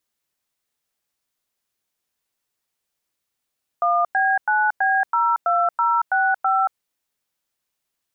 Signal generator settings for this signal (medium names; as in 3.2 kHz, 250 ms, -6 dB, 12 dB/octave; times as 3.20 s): DTMF "1B9B02065", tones 229 ms, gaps 99 ms, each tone -18.5 dBFS